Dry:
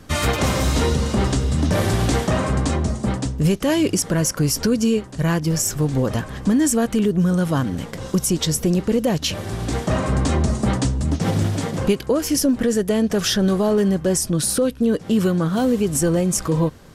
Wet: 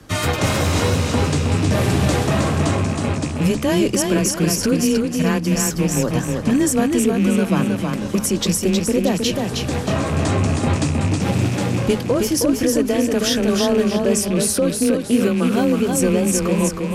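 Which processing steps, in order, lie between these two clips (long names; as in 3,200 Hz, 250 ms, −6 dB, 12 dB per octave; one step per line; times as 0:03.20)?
loose part that buzzes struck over −21 dBFS, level −23 dBFS
frequency shifter +20 Hz
hum removal 71.36 Hz, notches 3
feedback echo with a swinging delay time 317 ms, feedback 38%, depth 53 cents, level −4 dB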